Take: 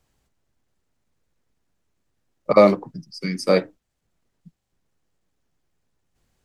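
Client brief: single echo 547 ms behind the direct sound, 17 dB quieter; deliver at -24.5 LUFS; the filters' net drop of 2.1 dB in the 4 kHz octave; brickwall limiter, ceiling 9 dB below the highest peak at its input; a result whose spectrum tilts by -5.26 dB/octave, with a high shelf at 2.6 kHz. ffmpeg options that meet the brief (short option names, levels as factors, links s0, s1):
-af "highshelf=f=2600:g=6.5,equalizer=f=4000:t=o:g=-9,alimiter=limit=0.299:level=0:latency=1,aecho=1:1:547:0.141,volume=1.06"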